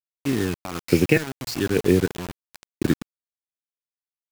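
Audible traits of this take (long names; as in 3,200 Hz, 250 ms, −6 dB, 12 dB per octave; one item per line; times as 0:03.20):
phaser sweep stages 8, 1.2 Hz, lowest notch 450–1,300 Hz
sample-and-hold tremolo 3.4 Hz, depth 80%
a quantiser's noise floor 6 bits, dither none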